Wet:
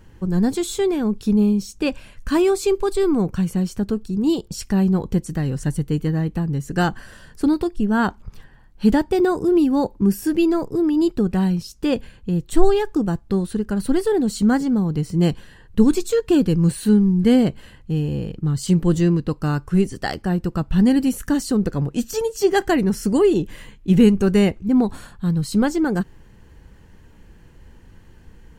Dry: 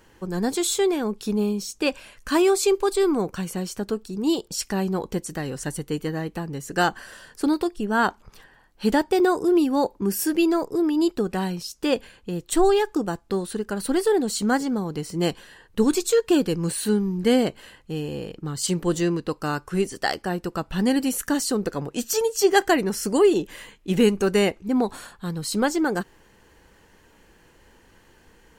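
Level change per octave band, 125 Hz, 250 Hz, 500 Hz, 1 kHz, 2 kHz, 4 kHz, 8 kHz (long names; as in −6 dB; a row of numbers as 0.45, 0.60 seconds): +10.0, +6.0, +1.0, −1.5, −1.5, −3.0, −4.5 decibels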